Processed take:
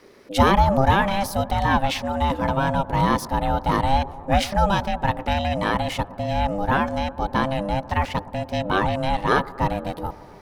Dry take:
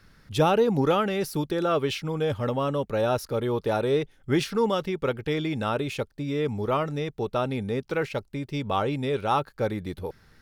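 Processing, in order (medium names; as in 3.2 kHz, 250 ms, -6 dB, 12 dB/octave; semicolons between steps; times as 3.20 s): feedback echo behind a low-pass 119 ms, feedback 77%, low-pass 960 Hz, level -18.5 dB; ring modulator 400 Hz; trim +7.5 dB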